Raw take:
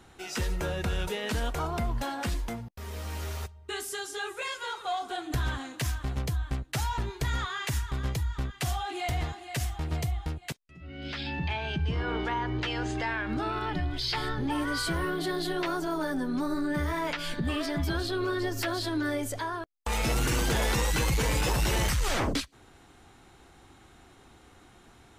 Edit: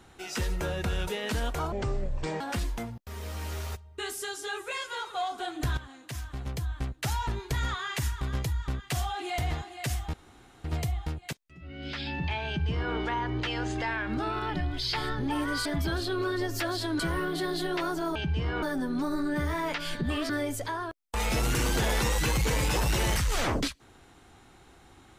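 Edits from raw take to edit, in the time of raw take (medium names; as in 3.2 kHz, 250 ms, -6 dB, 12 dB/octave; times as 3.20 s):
1.72–2.11 s: speed 57%
5.48–6.73 s: fade in, from -13.5 dB
9.84 s: insert room tone 0.51 s
11.67–12.14 s: copy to 16.01 s
17.68–19.02 s: move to 14.85 s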